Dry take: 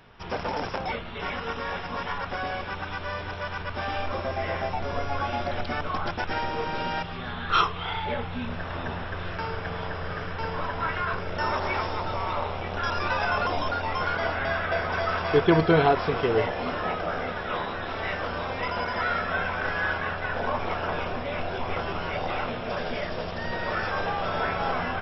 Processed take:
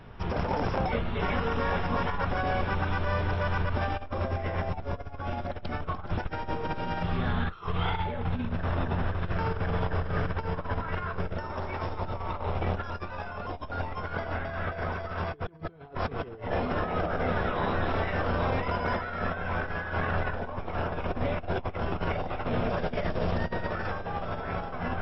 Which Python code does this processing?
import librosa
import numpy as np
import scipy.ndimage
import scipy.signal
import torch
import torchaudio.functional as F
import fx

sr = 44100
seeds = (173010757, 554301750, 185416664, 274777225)

y = fx.low_shelf(x, sr, hz=220.0, db=7.5)
y = fx.over_compress(y, sr, threshold_db=-29.0, ratio=-0.5)
y = fx.high_shelf(y, sr, hz=2200.0, db=-8.5)